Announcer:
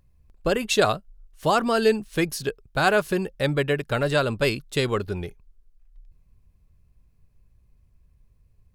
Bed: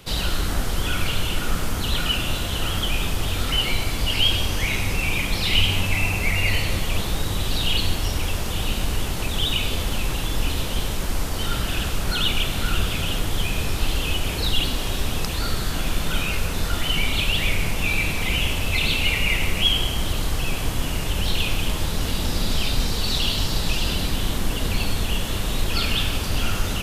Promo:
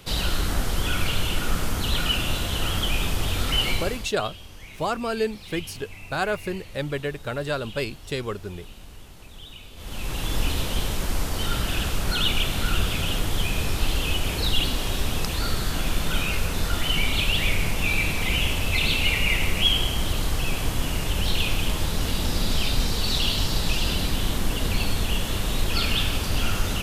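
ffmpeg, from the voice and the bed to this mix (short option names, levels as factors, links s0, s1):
-filter_complex "[0:a]adelay=3350,volume=0.531[s0];[1:a]volume=7.94,afade=t=out:st=3.7:d=0.4:silence=0.112202,afade=t=in:st=9.75:d=0.59:silence=0.112202[s1];[s0][s1]amix=inputs=2:normalize=0"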